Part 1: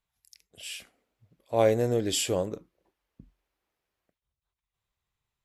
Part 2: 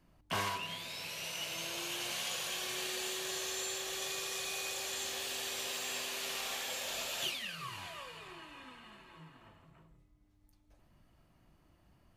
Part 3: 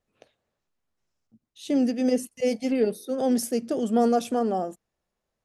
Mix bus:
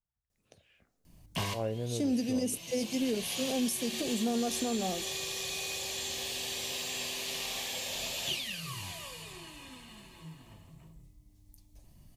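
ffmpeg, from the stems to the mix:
-filter_complex "[0:a]lowpass=f=1.7k:w=0.5412,lowpass=f=1.7k:w=1.3066,volume=-13.5dB,asplit=3[a][b][c];[b]volume=-16.5dB[d];[1:a]acrossover=split=4100[e][f];[f]acompressor=threshold=-56dB:ratio=4:attack=1:release=60[g];[e][g]amix=inputs=2:normalize=0,equalizer=f=1.4k:w=3.5:g=-11,adelay=1050,volume=1dB[h];[2:a]adelay=300,volume=-8dB[i];[c]apad=whole_len=582958[j];[h][j]sidechaincompress=threshold=-47dB:ratio=8:attack=31:release=1190[k];[d]aecho=0:1:464:1[l];[a][k][i][l]amix=inputs=4:normalize=0,bass=f=250:g=9,treble=f=4k:g=14,alimiter=limit=-22.5dB:level=0:latency=1:release=131"

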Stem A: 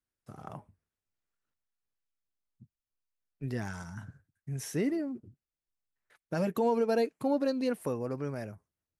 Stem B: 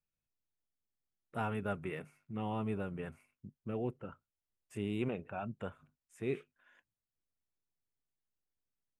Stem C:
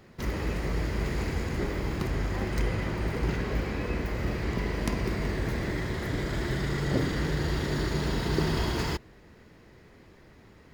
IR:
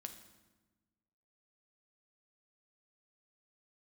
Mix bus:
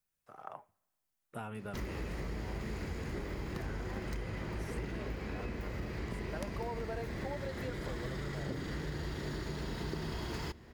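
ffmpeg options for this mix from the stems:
-filter_complex "[0:a]acrossover=split=470 3000:gain=0.0891 1 0.251[a][b][c];[a][b][c]amix=inputs=3:normalize=0,volume=0.5dB,asplit=2[d][e];[e]volume=-17dB[f];[1:a]highshelf=f=5.1k:g=9.5,acompressor=threshold=-40dB:ratio=3,volume=-1.5dB,asplit=2[g][h];[h]volume=-6dB[i];[2:a]adelay=1550,volume=-3dB,asplit=2[j][k];[k]volume=-10.5dB[l];[3:a]atrim=start_sample=2205[m];[f][i][l]amix=inputs=3:normalize=0[n];[n][m]afir=irnorm=-1:irlink=0[o];[d][g][j][o]amix=inputs=4:normalize=0,acompressor=threshold=-37dB:ratio=4"

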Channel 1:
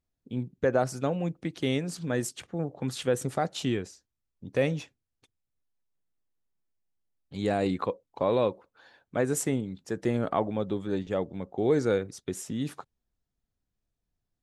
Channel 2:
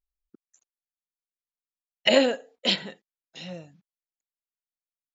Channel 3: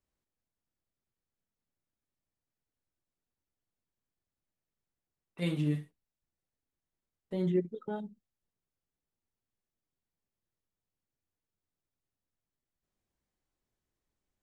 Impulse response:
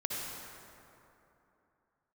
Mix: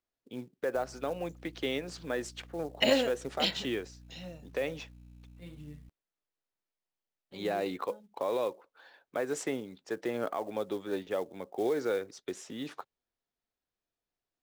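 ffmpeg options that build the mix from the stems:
-filter_complex "[0:a]acrossover=split=310 6200:gain=0.126 1 0.0891[a][b][c];[a][b][c]amix=inputs=3:normalize=0,alimiter=limit=-22dB:level=0:latency=1:release=156,volume=0dB[d];[1:a]aeval=exprs='val(0)+0.00562*(sin(2*PI*60*n/s)+sin(2*PI*2*60*n/s)/2+sin(2*PI*3*60*n/s)/3+sin(2*PI*4*60*n/s)/4+sin(2*PI*5*60*n/s)/5)':c=same,adelay=750,volume=-6.5dB[e];[2:a]volume=-17dB[f];[d][e][f]amix=inputs=3:normalize=0,acrusher=bits=6:mode=log:mix=0:aa=0.000001"

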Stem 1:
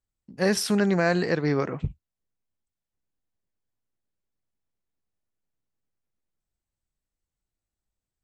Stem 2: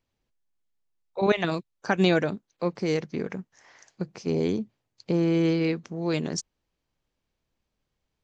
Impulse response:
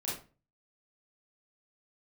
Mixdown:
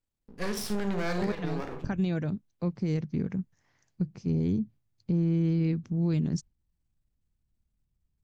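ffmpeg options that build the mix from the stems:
-filter_complex "[0:a]aeval=exprs='max(val(0),0)':c=same,volume=-3.5dB,asplit=2[a][b];[b]volume=-7dB[c];[1:a]lowshelf=f=490:g=8,agate=range=-7dB:threshold=-44dB:ratio=16:detection=peak,asubboost=boost=6.5:cutoff=200,volume=-10dB[d];[2:a]atrim=start_sample=2205[e];[c][e]afir=irnorm=-1:irlink=0[f];[a][d][f]amix=inputs=3:normalize=0,alimiter=limit=-20dB:level=0:latency=1:release=369"

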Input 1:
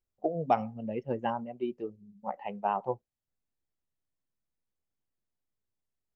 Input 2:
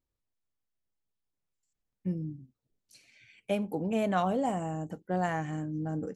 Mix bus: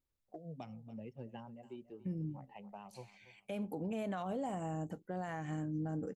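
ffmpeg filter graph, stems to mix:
-filter_complex "[0:a]acrossover=split=210|3000[a][b][c];[b]acompressor=threshold=-41dB:ratio=10[d];[a][d][c]amix=inputs=3:normalize=0,adelay=100,volume=-8dB,asplit=2[e][f];[f]volume=-16dB[g];[1:a]bandreject=f=5.6k:w=16,volume=-3dB,asplit=2[h][i];[i]apad=whole_len=275790[j];[e][j]sidechaincompress=threshold=-49dB:ratio=8:attack=16:release=126[k];[g]aecho=0:1:284|568|852|1136|1420:1|0.35|0.122|0.0429|0.015[l];[k][h][l]amix=inputs=3:normalize=0,alimiter=level_in=7dB:limit=-24dB:level=0:latency=1:release=125,volume=-7dB"

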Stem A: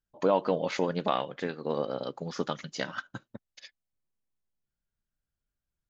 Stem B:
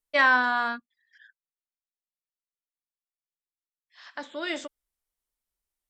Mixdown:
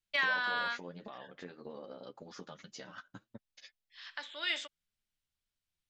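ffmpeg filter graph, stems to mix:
-filter_complex "[0:a]alimiter=limit=-21dB:level=0:latency=1:release=40,acompressor=threshold=-40dB:ratio=3,flanger=delay=8.4:depth=3.6:regen=5:speed=1.8:shape=triangular,volume=-2.5dB[a];[1:a]acompressor=threshold=-22dB:ratio=6,bandpass=f=3.2k:t=q:w=1.2:csg=0,deesser=1,volume=3dB[b];[a][b]amix=inputs=2:normalize=0"

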